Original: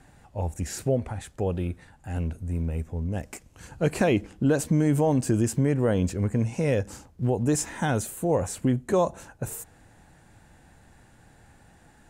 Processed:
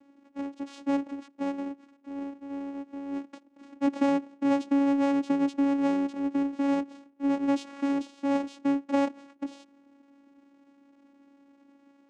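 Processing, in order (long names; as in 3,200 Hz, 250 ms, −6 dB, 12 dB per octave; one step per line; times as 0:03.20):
each half-wave held at its own peak
channel vocoder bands 4, saw 279 Hz
level −6 dB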